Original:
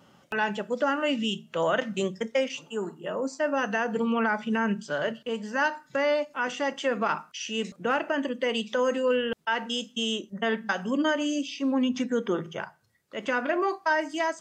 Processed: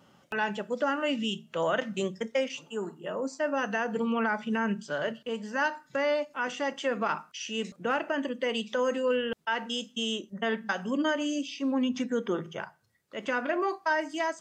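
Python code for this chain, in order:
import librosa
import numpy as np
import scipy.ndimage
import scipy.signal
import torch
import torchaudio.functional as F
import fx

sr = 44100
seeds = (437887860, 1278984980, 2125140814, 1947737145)

y = x * 10.0 ** (-2.5 / 20.0)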